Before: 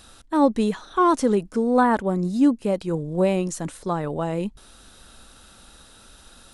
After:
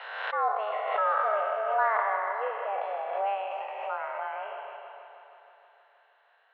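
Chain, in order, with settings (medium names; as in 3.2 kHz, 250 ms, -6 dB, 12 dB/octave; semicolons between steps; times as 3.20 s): spectral sustain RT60 2.26 s; spectral noise reduction 6 dB; on a send: multi-head delay 159 ms, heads first and second, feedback 61%, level -12.5 dB; on the sum: mistuned SSB +210 Hz 370–2600 Hz; swell ahead of each attack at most 43 dB/s; trim -9 dB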